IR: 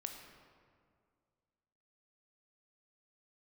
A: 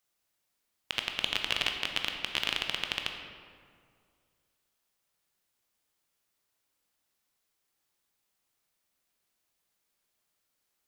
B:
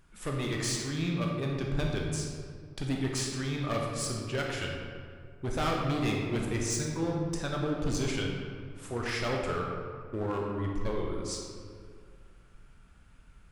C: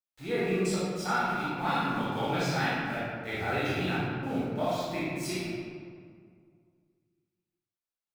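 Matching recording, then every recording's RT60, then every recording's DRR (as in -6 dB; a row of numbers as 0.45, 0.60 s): A; 2.1, 2.1, 2.1 s; 3.5, -1.0, -10.5 dB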